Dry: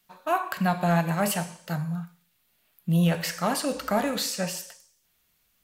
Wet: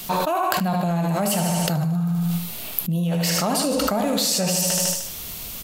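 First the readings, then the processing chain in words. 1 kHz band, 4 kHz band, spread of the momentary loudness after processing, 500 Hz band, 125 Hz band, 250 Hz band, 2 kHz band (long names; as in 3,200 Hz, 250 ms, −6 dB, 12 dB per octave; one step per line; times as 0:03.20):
+4.0 dB, +9.0 dB, 7 LU, +4.5 dB, +4.5 dB, +5.0 dB, +1.0 dB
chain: parametric band 1,700 Hz −9 dB 0.98 octaves
on a send: repeating echo 76 ms, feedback 49%, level −8.5 dB
on the sum: envelope flattener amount 100%
level −4.5 dB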